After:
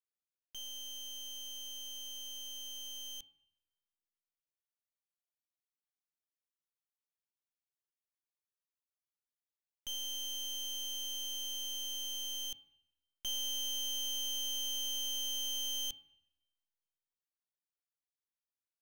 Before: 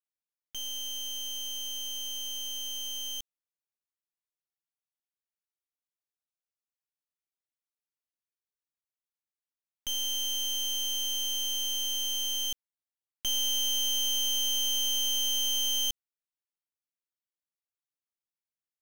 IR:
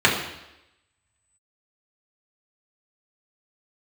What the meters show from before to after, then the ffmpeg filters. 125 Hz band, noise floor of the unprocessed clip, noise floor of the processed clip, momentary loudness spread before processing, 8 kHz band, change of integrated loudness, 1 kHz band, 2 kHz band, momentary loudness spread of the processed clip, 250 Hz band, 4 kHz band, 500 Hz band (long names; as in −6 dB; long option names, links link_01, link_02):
can't be measured, below −85 dBFS, below −85 dBFS, 9 LU, −8.5 dB, −8.5 dB, −9.0 dB, −9.5 dB, 8 LU, −8.0 dB, −8.5 dB, −7.5 dB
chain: -filter_complex "[0:a]asplit=2[link_01][link_02];[1:a]atrim=start_sample=2205,highshelf=frequency=3700:gain=-7[link_03];[link_02][link_03]afir=irnorm=-1:irlink=0,volume=-31dB[link_04];[link_01][link_04]amix=inputs=2:normalize=0,volume=-9dB"